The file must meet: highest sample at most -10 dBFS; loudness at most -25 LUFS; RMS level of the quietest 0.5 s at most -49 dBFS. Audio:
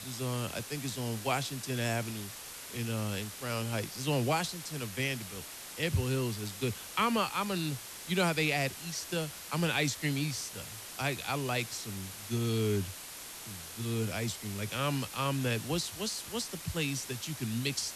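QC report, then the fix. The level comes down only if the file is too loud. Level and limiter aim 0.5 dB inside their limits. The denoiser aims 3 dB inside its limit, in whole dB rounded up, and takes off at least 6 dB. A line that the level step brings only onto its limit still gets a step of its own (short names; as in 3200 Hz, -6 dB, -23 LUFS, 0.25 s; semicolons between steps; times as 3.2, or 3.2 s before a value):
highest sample -17.5 dBFS: OK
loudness -33.5 LUFS: OK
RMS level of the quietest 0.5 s -45 dBFS: fail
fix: denoiser 7 dB, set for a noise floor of -45 dBFS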